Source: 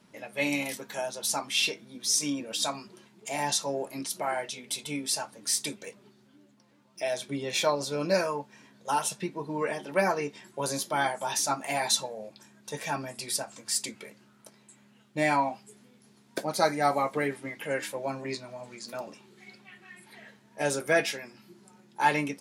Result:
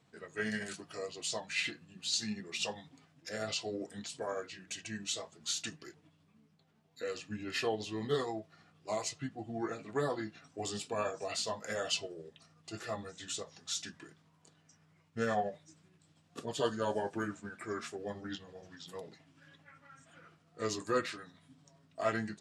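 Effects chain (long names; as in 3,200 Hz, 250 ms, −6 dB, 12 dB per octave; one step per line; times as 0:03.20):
pitch shift by two crossfaded delay taps −5 semitones
level −6.5 dB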